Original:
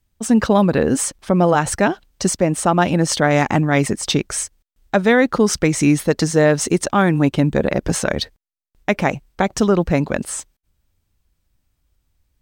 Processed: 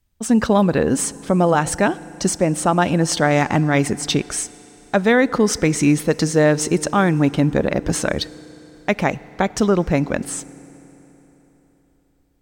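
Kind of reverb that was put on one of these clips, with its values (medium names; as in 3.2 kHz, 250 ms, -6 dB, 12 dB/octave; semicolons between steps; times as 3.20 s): FDN reverb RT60 4 s, high-frequency decay 0.75×, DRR 18.5 dB; trim -1 dB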